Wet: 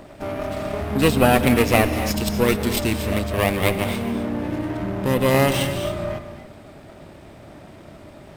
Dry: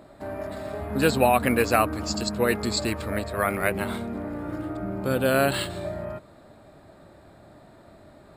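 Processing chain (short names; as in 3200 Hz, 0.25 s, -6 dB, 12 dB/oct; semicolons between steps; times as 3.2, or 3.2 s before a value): minimum comb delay 0.34 ms; in parallel at -2 dB: compressor, threshold -35 dBFS, peak gain reduction 18.5 dB; on the sum: non-linear reverb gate 0.29 s rising, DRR 8.5 dB; gain +3 dB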